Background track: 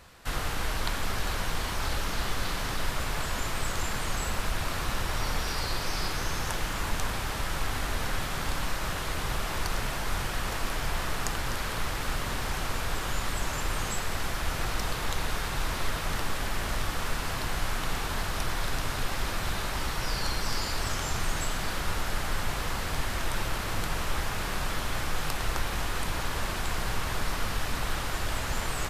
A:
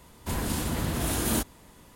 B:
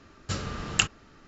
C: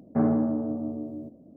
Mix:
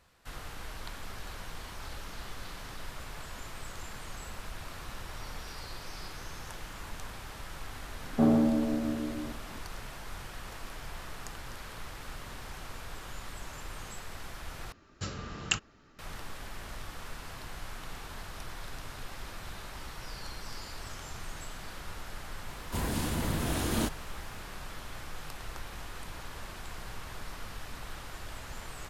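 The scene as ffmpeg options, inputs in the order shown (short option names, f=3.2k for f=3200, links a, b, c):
-filter_complex "[0:a]volume=-12dB[a];[1:a]acrossover=split=6300[b][c];[c]acompressor=threshold=-38dB:ratio=4:attack=1:release=60[d];[b][d]amix=inputs=2:normalize=0[e];[a]asplit=2[f][g];[f]atrim=end=14.724[h];[2:a]atrim=end=1.27,asetpts=PTS-STARTPTS,volume=-6dB[i];[g]atrim=start=15.986[j];[3:a]atrim=end=1.56,asetpts=PTS-STARTPTS,volume=-0.5dB,afade=t=in:d=0.004:c=hsin,afade=t=out:st=1.556:d=0.004:c=hsin,adelay=8030[k];[e]atrim=end=1.95,asetpts=PTS-STARTPTS,volume=-2.5dB,afade=t=in:d=0.004:c=hsin,afade=t=out:st=1.946:d=0.004:c=hsin,adelay=22460[l];[h][i]acrossfade=d=0.004:c1=hsin:c2=hsin[m];[m][j]acrossfade=d=0.004:c1=hsin:c2=hsin[n];[n][k][l]amix=inputs=3:normalize=0"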